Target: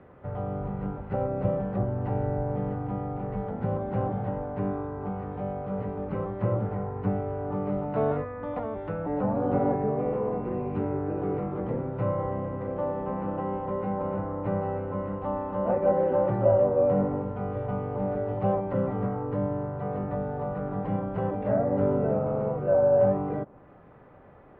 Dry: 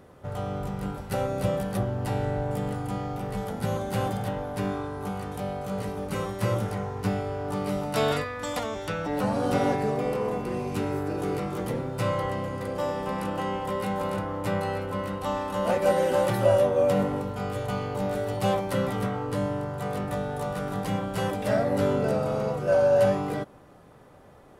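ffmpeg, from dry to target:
ffmpeg -i in.wav -filter_complex "[0:a]lowpass=frequency=2400:width=0.5412,lowpass=frequency=2400:width=1.3066,acrossover=split=120|1100[link_01][link_02][link_03];[link_03]acompressor=threshold=-56dB:ratio=4[link_04];[link_01][link_02][link_04]amix=inputs=3:normalize=0" out.wav

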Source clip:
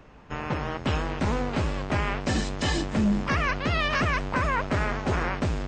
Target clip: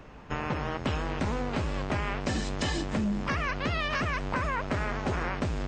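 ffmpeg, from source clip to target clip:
ffmpeg -i in.wav -af "acompressor=threshold=-29dB:ratio=6,volume=2.5dB" out.wav

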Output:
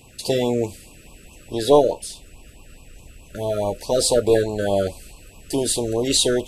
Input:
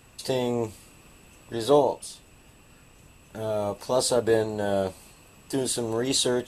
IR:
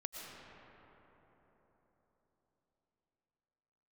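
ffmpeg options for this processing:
-af "aeval=exprs='0.447*(cos(1*acos(clip(val(0)/0.447,-1,1)))-cos(1*PI/2))+0.02*(cos(2*acos(clip(val(0)/0.447,-1,1)))-cos(2*PI/2))':channel_layout=same,asubboost=boost=4.5:cutoff=65,afftfilt=real='re*(1-between(b*sr/1024,850*pow(1700/850,0.5+0.5*sin(2*PI*4.7*pts/sr))/1.41,850*pow(1700/850,0.5+0.5*sin(2*PI*4.7*pts/sr))*1.41))':imag='im*(1-between(b*sr/1024,850*pow(1700/850,0.5+0.5*sin(2*PI*4.7*pts/sr))/1.41,850*pow(1700/850,0.5+0.5*sin(2*PI*4.7*pts/sr))*1.41))':win_size=1024:overlap=0.75,volume=6dB"

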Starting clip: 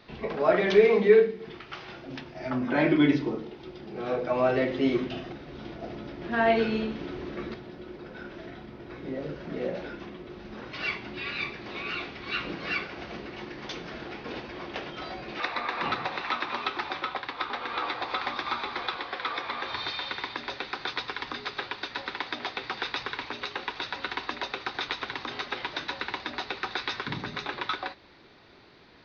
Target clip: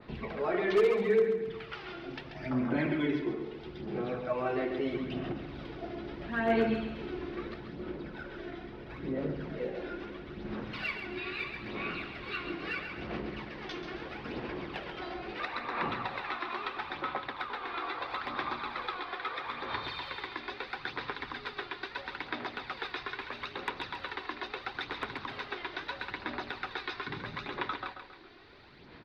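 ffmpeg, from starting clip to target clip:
ffmpeg -i in.wav -filter_complex "[0:a]lowpass=4400,equalizer=frequency=670:width_type=o:width=1:gain=-2.5,asplit=2[link_01][link_02];[link_02]acompressor=threshold=-38dB:ratio=6,volume=3dB[link_03];[link_01][link_03]amix=inputs=2:normalize=0,aphaser=in_gain=1:out_gain=1:delay=2.9:decay=0.49:speed=0.76:type=sinusoidal,aeval=exprs='0.335*(abs(mod(val(0)/0.335+3,4)-2)-1)':channel_layout=same,asplit=2[link_04][link_05];[link_05]aecho=0:1:136|272|408|544:0.398|0.155|0.0606|0.0236[link_06];[link_04][link_06]amix=inputs=2:normalize=0,adynamicequalizer=threshold=0.0158:dfrequency=2000:dqfactor=0.7:tfrequency=2000:tqfactor=0.7:attack=5:release=100:ratio=0.375:range=1.5:mode=cutabove:tftype=highshelf,volume=-9dB" out.wav

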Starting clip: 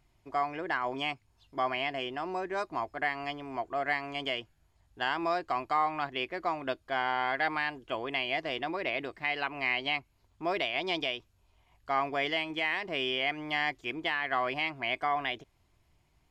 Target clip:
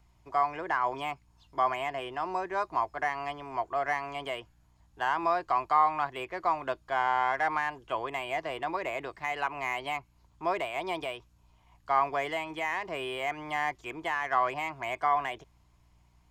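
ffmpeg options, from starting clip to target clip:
ffmpeg -i in.wav -filter_complex "[0:a]aeval=exprs='val(0)+0.000708*(sin(2*PI*60*n/s)+sin(2*PI*2*60*n/s)/2+sin(2*PI*3*60*n/s)/3+sin(2*PI*4*60*n/s)/4+sin(2*PI*5*60*n/s)/5)':channel_layout=same,acrossover=split=3000[link_01][link_02];[link_02]acompressor=threshold=-51dB:ratio=4:attack=1:release=60[link_03];[link_01][link_03]amix=inputs=2:normalize=0,equalizer=frequency=250:width_type=o:width=0.67:gain=-7,equalizer=frequency=1000:width_type=o:width=0.67:gain=7,equalizer=frequency=6300:width_type=o:width=0.67:gain=4,acrossover=split=280|970|1900[link_04][link_05][link_06][link_07];[link_07]asoftclip=type=tanh:threshold=-37.5dB[link_08];[link_04][link_05][link_06][link_08]amix=inputs=4:normalize=0" out.wav

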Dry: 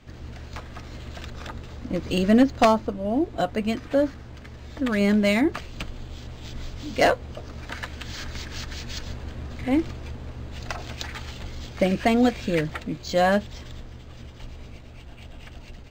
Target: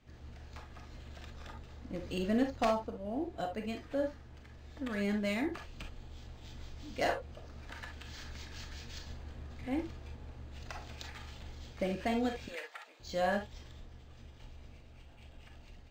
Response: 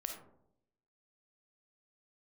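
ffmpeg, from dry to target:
-filter_complex "[0:a]asettb=1/sr,asplit=3[link_01][link_02][link_03];[link_01]atrim=end=12.484[link_04];[link_02]atrim=start=12.48:end=13,asetpts=PTS-STARTPTS,afade=type=in:duration=0.004:curve=qsin,afade=type=out:start_time=0.516:duration=0.004:curve=qsin,highpass=frequency=610:width=0.5412,highpass=frequency=610:width=1.3066[link_05];[link_03]atrim=start=12.996[link_06];[link_04][link_05]acrossfade=duration=0.004:curve1=hsin:curve2=qsin[link_07];[link_07][link_06]acrossfade=duration=0.004:curve1=qsin:curve2=hsin[link_08];[1:a]atrim=start_sample=2205,atrim=end_sample=4410,asetrate=57330,aresample=44100[link_09];[link_08][link_09]afir=irnorm=-1:irlink=0,volume=-8.5dB"

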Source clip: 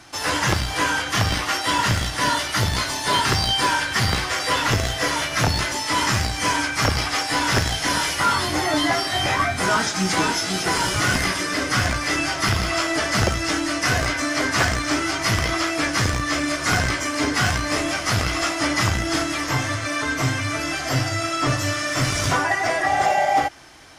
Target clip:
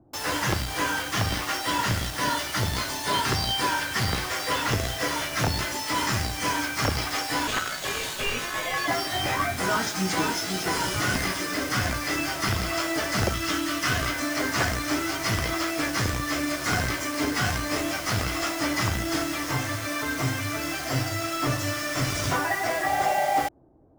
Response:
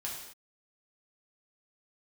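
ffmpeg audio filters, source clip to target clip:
-filter_complex "[0:a]equalizer=frequency=330:width_type=o:width=2.3:gain=2.5,acrossover=split=650[link_01][link_02];[link_02]acrusher=bits=4:mix=0:aa=0.000001[link_03];[link_01][link_03]amix=inputs=2:normalize=0,asettb=1/sr,asplit=3[link_04][link_05][link_06];[link_04]atrim=end=7.474[link_07];[link_05]atrim=start=7.47:end=8.88,asetpts=PTS-STARTPTS,afade=type=in:duration=0.004:curve=qsin,afade=type=out:start_time=1.406:duration=0.004:curve=qsin,aeval=exprs='val(0)*sin(2*PI*1400*n/s)':channel_layout=same[link_08];[link_06]atrim=start=8.876[link_09];[link_07][link_08]acrossfade=duration=0.004:curve1=hsin:curve2=qsin[link_10];[link_10][link_09]acrossfade=duration=0.004:curve1=qsin:curve2=hsin,asettb=1/sr,asplit=3[link_11][link_12][link_13];[link_11]atrim=end=13.334[link_14];[link_12]atrim=start=13.33:end=14.11,asetpts=PTS-STARTPTS,afade=type=in:duration=0.004:curve=qsin,afade=type=out:start_time=0.776:duration=0.004:curve=qsin,equalizer=frequency=500:width_type=o:width=0.33:gain=-6,equalizer=frequency=800:width_type=o:width=0.33:gain=-6,equalizer=frequency=1250:width_type=o:width=0.33:gain=5,equalizer=frequency=3150:width_type=o:width=0.33:gain=6[link_15];[link_13]atrim=start=14.106[link_16];[link_14][link_15]acrossfade=duration=0.004:curve1=hsin:curve2=qsin[link_17];[link_17][link_16]acrossfade=duration=0.004:curve1=qsin:curve2=hsin,volume=-6dB"

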